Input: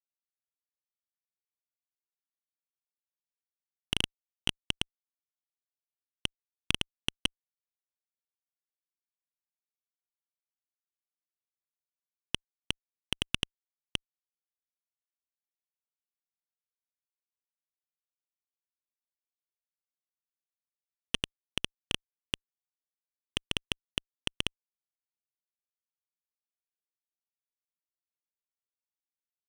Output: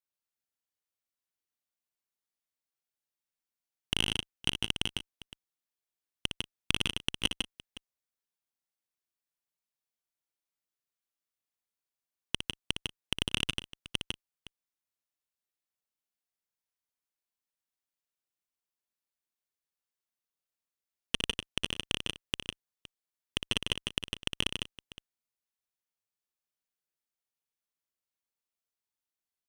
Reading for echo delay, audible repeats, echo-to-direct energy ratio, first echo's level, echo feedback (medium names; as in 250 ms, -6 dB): 59 ms, 4, -2.0 dB, -8.0 dB, no regular repeats